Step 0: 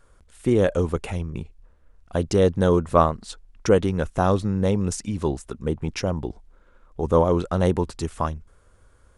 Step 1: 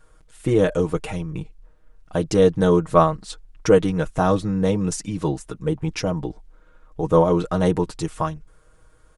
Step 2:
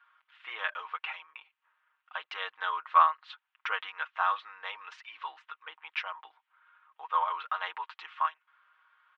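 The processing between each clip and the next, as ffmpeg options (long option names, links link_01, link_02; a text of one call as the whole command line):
ffmpeg -i in.wav -af "aecho=1:1:6.4:0.75" out.wav
ffmpeg -i in.wav -af "asuperpass=centerf=1800:order=8:qfactor=0.78" out.wav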